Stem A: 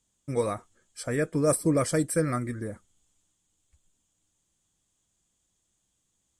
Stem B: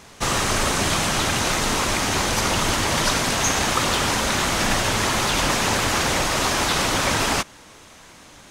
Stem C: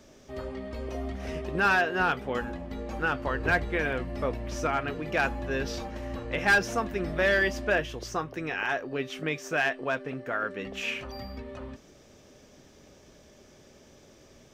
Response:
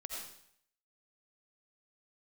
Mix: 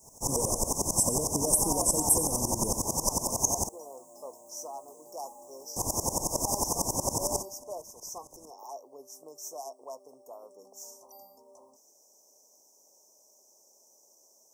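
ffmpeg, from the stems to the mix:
-filter_complex "[0:a]highpass=160,highshelf=frequency=12000:gain=11,acompressor=threshold=-33dB:ratio=6,volume=-1dB,asplit=2[link_01][link_02];[link_02]volume=-3dB[link_03];[1:a]highshelf=frequency=5200:gain=-7,aeval=exprs='val(0)*pow(10,-20*if(lt(mod(-11*n/s,1),2*abs(-11)/1000),1-mod(-11*n/s,1)/(2*abs(-11)/1000),(mod(-11*n/s,1)-2*abs(-11)/1000)/(1-2*abs(-11)/1000))/20)':channel_layout=same,volume=-3dB,asplit=3[link_04][link_05][link_06];[link_04]atrim=end=3.69,asetpts=PTS-STARTPTS,afade=type=out:start_time=3.686:duration=0.004:curve=hsin[link_07];[link_05]atrim=start=3.69:end=5.76,asetpts=PTS-STARTPTS,volume=0[link_08];[link_06]atrim=start=5.76,asetpts=PTS-STARTPTS,afade=type=in:duration=0.004:curve=hsin[link_09];[link_07][link_08][link_09]concat=n=3:v=0:a=1[link_10];[2:a]highpass=720,volume=-6.5dB[link_11];[3:a]atrim=start_sample=2205[link_12];[link_03][link_12]afir=irnorm=-1:irlink=0[link_13];[link_01][link_10][link_11][link_13]amix=inputs=4:normalize=0,asuperstop=centerf=2400:order=20:qfactor=0.55,aemphasis=mode=production:type=75kf"

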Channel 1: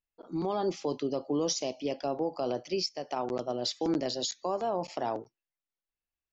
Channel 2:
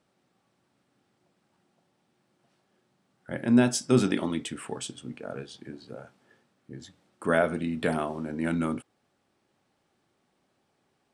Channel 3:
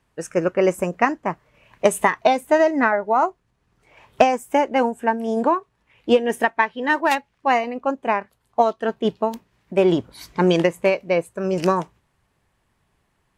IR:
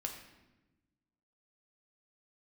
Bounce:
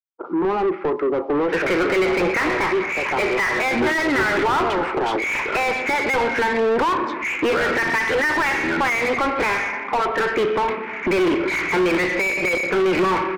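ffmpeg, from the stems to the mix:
-filter_complex "[0:a]agate=range=-33dB:threshold=-47dB:ratio=3:detection=peak,lowpass=frequency=1700:width=0.5412,lowpass=frequency=1700:width=1.3066,volume=-5.5dB,asplit=2[link_01][link_02];[link_02]volume=-17dB[link_03];[1:a]adelay=250,volume=-12.5dB[link_04];[2:a]acompressor=threshold=-26dB:ratio=2.5,lowpass=frequency=2300:width_type=q:width=3.9,adelay=1350,volume=-1dB,asplit=2[link_05][link_06];[link_06]volume=-11dB[link_07];[link_01][link_05]amix=inputs=2:normalize=0,equalizer=frequency=920:width_type=o:width=0.77:gain=3.5,acompressor=threshold=-39dB:ratio=2,volume=0dB[link_08];[3:a]atrim=start_sample=2205[link_09];[link_03][link_07]amix=inputs=2:normalize=0[link_10];[link_10][link_09]afir=irnorm=-1:irlink=0[link_11];[link_04][link_08][link_11]amix=inputs=3:normalize=0,dynaudnorm=framelen=310:gausssize=7:maxgain=4dB,highpass=frequency=150:width=0.5412,highpass=frequency=150:width=1.3066,equalizer=frequency=230:width_type=q:width=4:gain=-6,equalizer=frequency=370:width_type=q:width=4:gain=8,equalizer=frequency=660:width_type=q:width=4:gain=-9,equalizer=frequency=1400:width_type=q:width=4:gain=7,equalizer=frequency=2200:width_type=q:width=4:gain=7,lowpass=frequency=5500:width=0.5412,lowpass=frequency=5500:width=1.3066,asplit=2[link_12][link_13];[link_13]highpass=frequency=720:poles=1,volume=34dB,asoftclip=type=tanh:threshold=-11dB[link_14];[link_12][link_14]amix=inputs=2:normalize=0,lowpass=frequency=1400:poles=1,volume=-6dB"

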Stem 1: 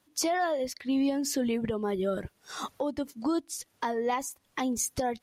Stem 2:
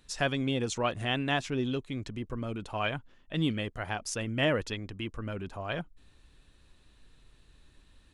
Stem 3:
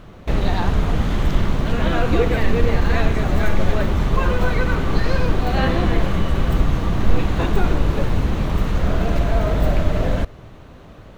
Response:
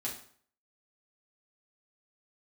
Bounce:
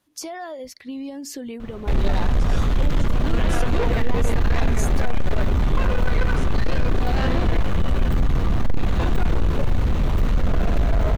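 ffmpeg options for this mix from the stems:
-filter_complex "[0:a]acompressor=threshold=-31dB:ratio=2.5,volume=-1dB[link_01];[1:a]adelay=2300,volume=-11dB[link_02];[2:a]asoftclip=type=tanh:threshold=-19dB,adelay=1600,volume=-0.5dB,asplit=2[link_03][link_04];[link_04]volume=-14.5dB[link_05];[3:a]atrim=start_sample=2205[link_06];[link_05][link_06]afir=irnorm=-1:irlink=0[link_07];[link_01][link_02][link_03][link_07]amix=inputs=4:normalize=0,lowshelf=frequency=77:gain=7"

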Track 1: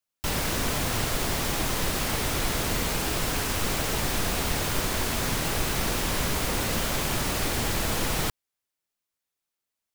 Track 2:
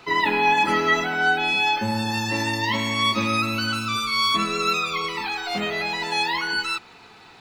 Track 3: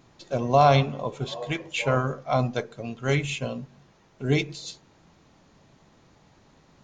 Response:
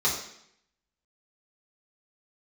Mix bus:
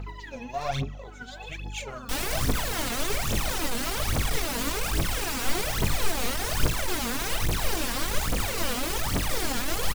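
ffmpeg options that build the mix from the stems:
-filter_complex "[0:a]flanger=delay=18.5:depth=3.7:speed=1.4,adelay=1850,volume=-1dB[link_01];[1:a]acompressor=threshold=-34dB:ratio=4,aphaser=in_gain=1:out_gain=1:delay=2.7:decay=0.62:speed=0.55:type=sinusoidal,volume=-14dB[link_02];[2:a]aemphasis=mode=production:type=75fm,tremolo=f=1.2:d=0.49,volume=-13.5dB,asplit=2[link_03][link_04];[link_04]apad=whole_len=326627[link_05];[link_02][link_05]sidechaincompress=threshold=-43dB:ratio=8:attack=16:release=469[link_06];[link_01][link_06][link_03]amix=inputs=3:normalize=0,aeval=exprs='val(0)+0.00562*(sin(2*PI*50*n/s)+sin(2*PI*2*50*n/s)/2+sin(2*PI*3*50*n/s)/3+sin(2*PI*4*50*n/s)/4+sin(2*PI*5*50*n/s)/5)':channel_layout=same,aeval=exprs='clip(val(0),-1,0.0299)':channel_layout=same,aphaser=in_gain=1:out_gain=1:delay=4.4:decay=0.75:speed=1.2:type=triangular"

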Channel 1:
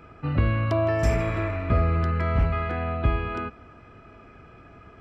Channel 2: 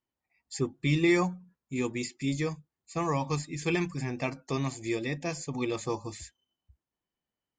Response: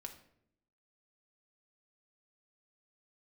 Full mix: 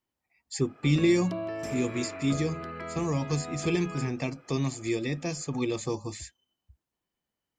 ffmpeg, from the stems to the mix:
-filter_complex "[0:a]highpass=270,adelay=600,volume=-5dB[link_01];[1:a]volume=3dB[link_02];[link_01][link_02]amix=inputs=2:normalize=0,acrossover=split=500|3000[link_03][link_04][link_05];[link_04]acompressor=threshold=-39dB:ratio=6[link_06];[link_03][link_06][link_05]amix=inputs=3:normalize=0"

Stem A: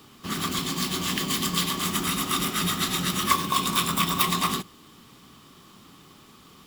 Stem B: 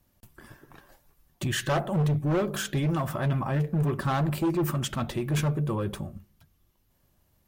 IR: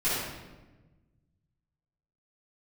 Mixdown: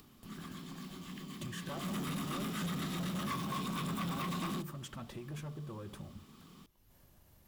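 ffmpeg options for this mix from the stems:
-filter_complex "[0:a]bandreject=frequency=60:width_type=h:width=6,bandreject=frequency=120:width_type=h:width=6,bandreject=frequency=180:width_type=h:width=6,acrossover=split=2900[link_01][link_02];[link_02]acompressor=threshold=-32dB:ratio=4:attack=1:release=60[link_03];[link_01][link_03]amix=inputs=2:normalize=0,equalizer=frequency=180:width=1.1:gain=9.5,volume=-10.5dB,afade=type=in:start_time=1.65:duration=0.25:silence=0.281838[link_04];[1:a]acompressor=threshold=-36dB:ratio=6,volume=-6dB[link_05];[link_04][link_05]amix=inputs=2:normalize=0,asoftclip=type=tanh:threshold=-33dB,acompressor=mode=upward:threshold=-52dB:ratio=2.5"

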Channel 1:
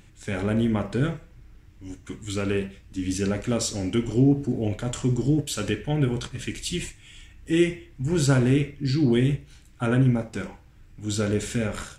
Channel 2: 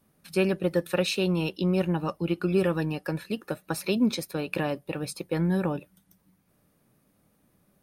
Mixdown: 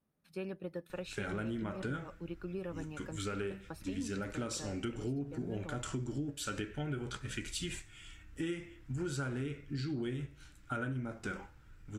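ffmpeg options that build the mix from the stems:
ffmpeg -i stem1.wav -i stem2.wav -filter_complex "[0:a]flanger=delay=2:depth=1.6:regen=78:speed=0.46:shape=triangular,equalizer=frequency=1400:width=3.4:gain=9.5,adelay=900,volume=-2dB[link_01];[1:a]highshelf=frequency=4100:gain=-9,volume=-15dB[link_02];[link_01][link_02]amix=inputs=2:normalize=0,acompressor=threshold=-35dB:ratio=6" out.wav

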